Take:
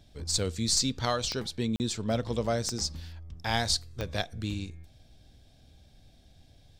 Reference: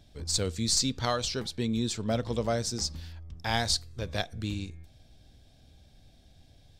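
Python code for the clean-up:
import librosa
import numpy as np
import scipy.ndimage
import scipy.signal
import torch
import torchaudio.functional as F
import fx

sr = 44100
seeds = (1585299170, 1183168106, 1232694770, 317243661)

y = fx.fix_declick_ar(x, sr, threshold=10.0)
y = fx.fix_interpolate(y, sr, at_s=(1.76,), length_ms=39.0)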